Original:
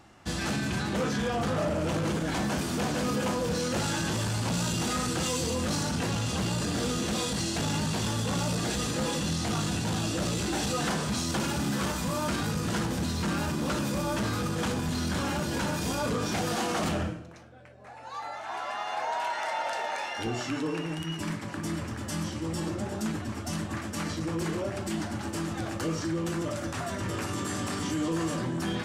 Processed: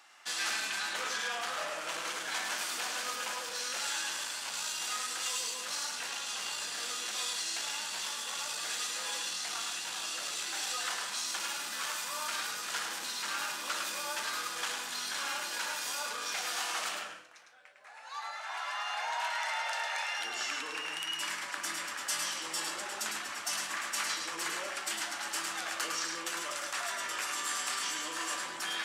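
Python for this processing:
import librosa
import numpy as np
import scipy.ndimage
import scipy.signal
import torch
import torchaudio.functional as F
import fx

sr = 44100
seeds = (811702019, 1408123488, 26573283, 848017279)

p1 = fx.octave_divider(x, sr, octaves=2, level_db=-2.0)
p2 = scipy.signal.sosfilt(scipy.signal.butter(2, 1300.0, 'highpass', fs=sr, output='sos'), p1)
p3 = fx.rider(p2, sr, range_db=10, speed_s=2.0)
y = p3 + fx.echo_single(p3, sr, ms=105, db=-5.0, dry=0)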